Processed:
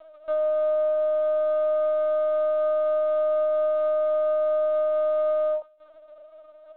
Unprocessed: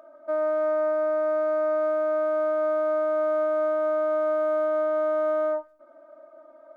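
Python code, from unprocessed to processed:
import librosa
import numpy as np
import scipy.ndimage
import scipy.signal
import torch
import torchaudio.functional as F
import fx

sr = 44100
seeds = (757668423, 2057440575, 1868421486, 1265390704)

y = fx.cvsd(x, sr, bps=32000)
y = fx.highpass(y, sr, hz=330.0, slope=6)
y = fx.lpc_vocoder(y, sr, seeds[0], excitation='pitch_kept', order=16)
y = y * librosa.db_to_amplitude(2.5)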